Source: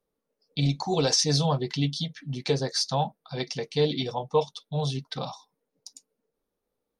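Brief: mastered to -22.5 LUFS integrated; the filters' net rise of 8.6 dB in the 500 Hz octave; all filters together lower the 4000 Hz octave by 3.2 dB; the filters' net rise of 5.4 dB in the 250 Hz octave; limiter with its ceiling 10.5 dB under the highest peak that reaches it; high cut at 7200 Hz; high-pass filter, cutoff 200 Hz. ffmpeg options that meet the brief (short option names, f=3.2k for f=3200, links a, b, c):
-af "highpass=200,lowpass=7.2k,equalizer=f=250:t=o:g=7,equalizer=f=500:t=o:g=8,equalizer=f=4k:t=o:g=-3.5,volume=4dB,alimiter=limit=-10.5dB:level=0:latency=1"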